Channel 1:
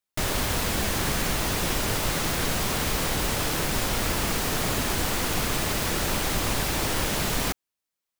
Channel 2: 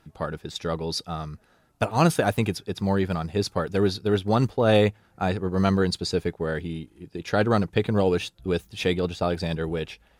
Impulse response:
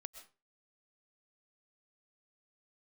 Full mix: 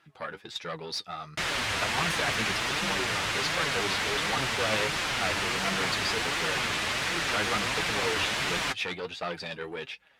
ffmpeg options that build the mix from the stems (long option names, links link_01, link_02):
-filter_complex "[0:a]lowpass=9500,adelay=1200,volume=-6.5dB[link_01];[1:a]highpass=frequency=130:poles=1,aeval=exprs='(tanh(14.1*val(0)+0.35)-tanh(0.35))/14.1':channel_layout=same,volume=-6dB[link_02];[link_01][link_02]amix=inputs=2:normalize=0,highpass=46,equalizer=frequency=2200:width=0.41:gain=13.5,flanger=delay=5.5:depth=5:regen=36:speed=1.4:shape=triangular"